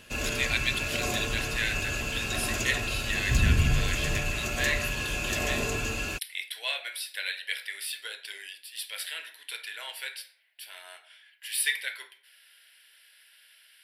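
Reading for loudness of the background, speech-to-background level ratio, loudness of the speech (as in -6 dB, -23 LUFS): -29.0 LUFS, -4.0 dB, -33.0 LUFS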